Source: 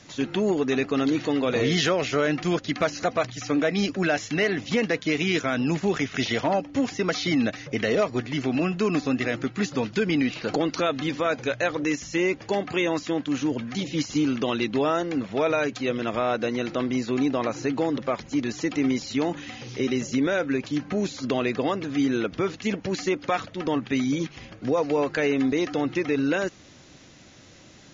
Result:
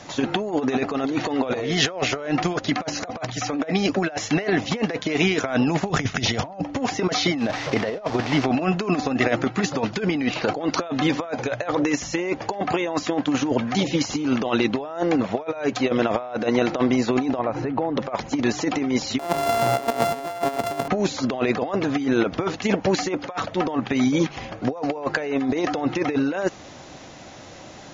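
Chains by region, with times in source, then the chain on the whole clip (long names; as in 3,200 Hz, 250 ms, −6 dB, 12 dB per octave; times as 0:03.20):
0:05.90–0:06.65: bass and treble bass +11 dB, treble +6 dB + downward expander −29 dBFS
0:07.38–0:08.46: linear delta modulator 32 kbit/s, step −33.5 dBFS + one half of a high-frequency compander encoder only
0:17.39–0:17.97: low-pass filter 2,500 Hz + low-shelf EQ 120 Hz +11 dB + downward compressor 8 to 1, threshold −30 dBFS
0:19.19–0:20.88: samples sorted by size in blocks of 64 samples + multiband upward and downward compressor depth 70%
whole clip: parametric band 770 Hz +11 dB 1.3 octaves; compressor whose output falls as the input rises −23 dBFS, ratio −0.5; level +1.5 dB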